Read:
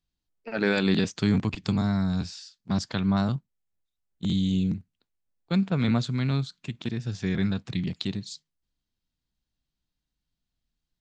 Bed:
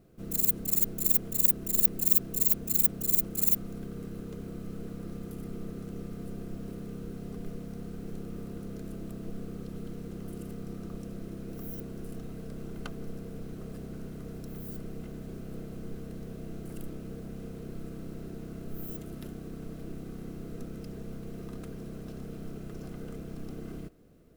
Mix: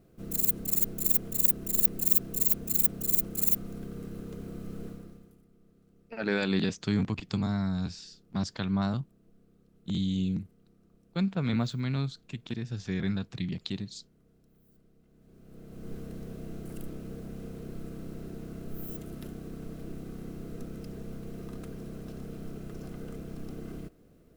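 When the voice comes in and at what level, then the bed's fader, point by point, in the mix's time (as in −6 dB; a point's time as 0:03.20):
5.65 s, −4.5 dB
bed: 0:04.87 −0.5 dB
0:05.47 −23.5 dB
0:15.05 −23.5 dB
0:15.92 0 dB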